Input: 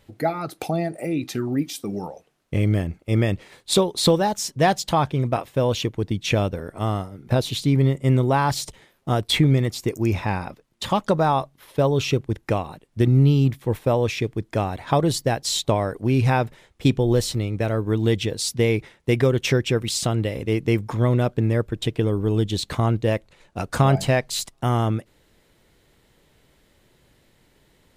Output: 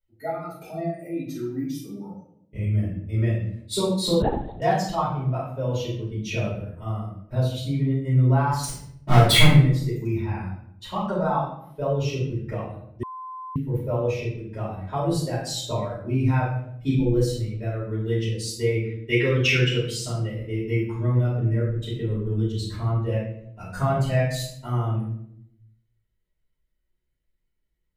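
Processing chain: per-bin expansion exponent 1.5; 8.63–9.47 sample leveller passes 5; 18.78–19.68 bell 2700 Hz +12.5 dB 1.9 oct; shoebox room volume 140 m³, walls mixed, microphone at 4.7 m; 4.22–4.62 LPC vocoder at 8 kHz whisper; 13.03–13.56 bleep 1030 Hz -17.5 dBFS; gain -16 dB

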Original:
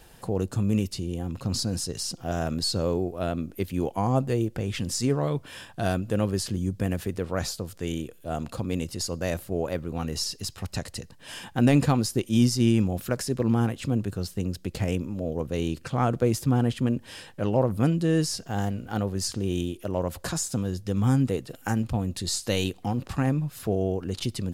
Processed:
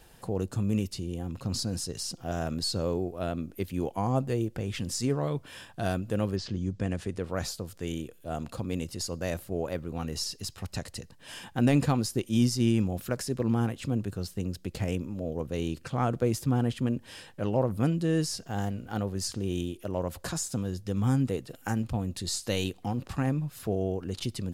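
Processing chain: 6.35–7.22 LPF 5000 Hz -> 11000 Hz 24 dB/oct; gain -3.5 dB

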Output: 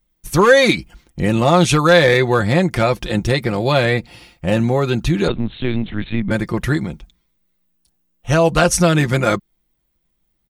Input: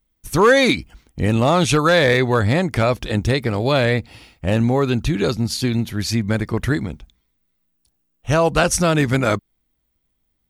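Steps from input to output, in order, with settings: comb 5.7 ms, depth 52%; 5.28–6.31 LPC vocoder at 8 kHz pitch kept; gain +1 dB

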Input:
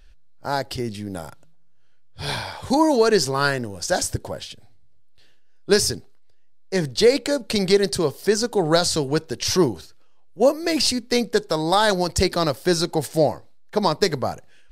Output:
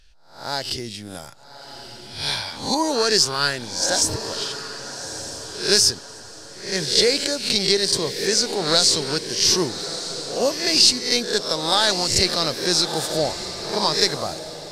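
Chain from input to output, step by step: spectral swells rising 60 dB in 0.46 s; bell 5000 Hz +12 dB 2.3 oct; on a send: diffused feedback echo 1.226 s, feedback 41%, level -10.5 dB; on the sum: gain -6.5 dB

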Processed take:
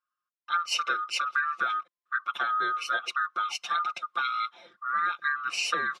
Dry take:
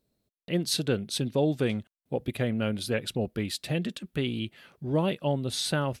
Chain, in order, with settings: band-swap scrambler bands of 1000 Hz; BPF 230–4500 Hz; comb 5.7 ms, depth 95%; compressor 6:1, threshold -26 dBFS, peak gain reduction 9 dB; three-band expander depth 40%; gain +1.5 dB

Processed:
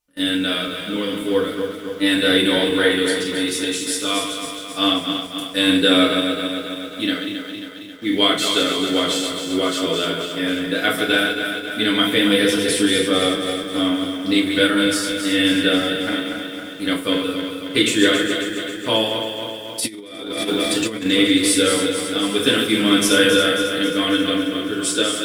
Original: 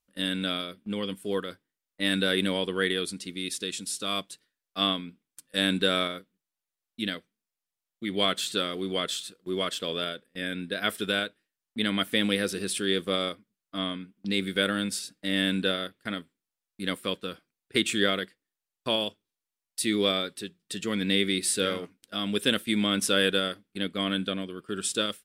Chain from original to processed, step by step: regenerating reverse delay 0.135 s, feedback 77%, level -6.5 dB; in parallel at -11 dB: bit-crush 7-bit; on the sum: FDN reverb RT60 0.39 s, low-frequency decay 0.9×, high-frequency decay 0.9×, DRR -3 dB; 19.8–21.06 negative-ratio compressor -25 dBFS, ratio -0.5; gain +1.5 dB

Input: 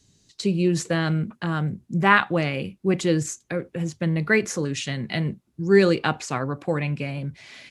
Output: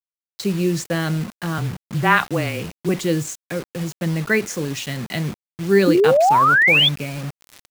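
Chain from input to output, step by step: 1.58–2.89 frequency shift -21 Hz; bit-crush 6-bit; 5.87–6.89 painted sound rise 280–3600 Hz -15 dBFS; gain +1 dB

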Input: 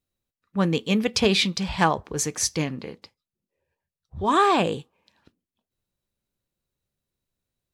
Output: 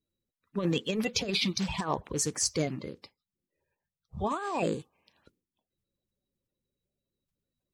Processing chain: bin magnitudes rounded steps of 30 dB; negative-ratio compressor -23 dBFS, ratio -0.5; gain -5 dB

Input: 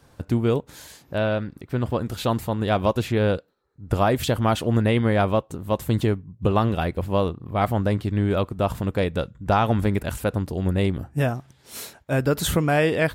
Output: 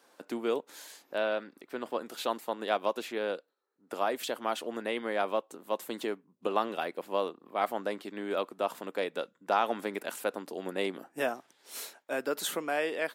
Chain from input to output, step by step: 2.28–2.85 transient shaper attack +3 dB, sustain -4 dB; Bessel high-pass 410 Hz, order 6; vocal rider within 4 dB 2 s; gain -6.5 dB

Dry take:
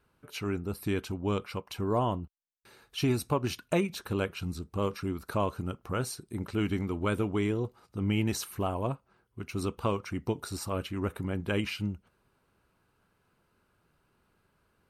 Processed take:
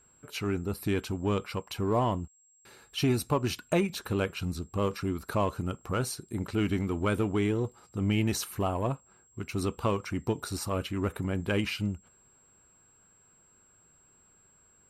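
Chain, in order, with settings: in parallel at -9.5 dB: overloaded stage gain 30.5 dB; on the sum: whine 7600 Hz -61 dBFS

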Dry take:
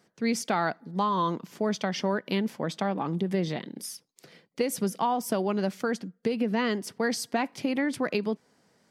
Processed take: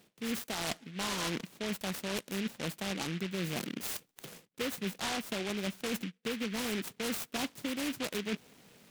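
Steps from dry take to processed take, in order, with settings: reverse; compressor 5:1, threshold -41 dBFS, peak gain reduction 17.5 dB; reverse; noise-modulated delay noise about 2300 Hz, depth 0.22 ms; gain +6.5 dB

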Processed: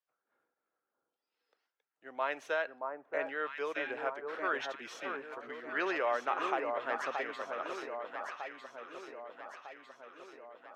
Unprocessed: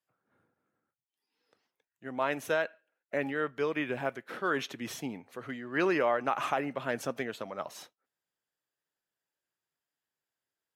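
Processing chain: three-band isolator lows -22 dB, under 340 Hz, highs -19 dB, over 6700 Hz; echo with dull and thin repeats by turns 0.626 s, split 1300 Hz, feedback 75%, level -4 dB; dynamic EQ 1300 Hz, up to +3 dB, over -40 dBFS, Q 0.71; gain -5 dB

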